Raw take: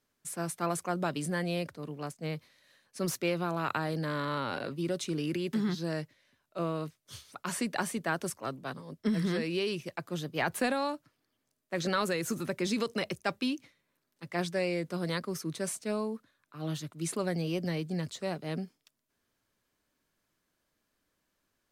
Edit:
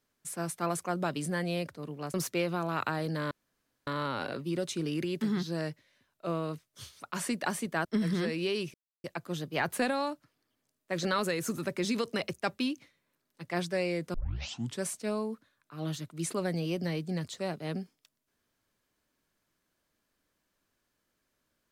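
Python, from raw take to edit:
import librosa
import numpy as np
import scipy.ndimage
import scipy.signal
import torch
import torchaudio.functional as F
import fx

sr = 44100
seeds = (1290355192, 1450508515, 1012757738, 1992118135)

y = fx.edit(x, sr, fx.cut(start_s=2.14, length_s=0.88),
    fx.insert_room_tone(at_s=4.19, length_s=0.56),
    fx.cut(start_s=8.17, length_s=0.8),
    fx.insert_silence(at_s=9.86, length_s=0.3),
    fx.tape_start(start_s=14.96, length_s=0.67), tone=tone)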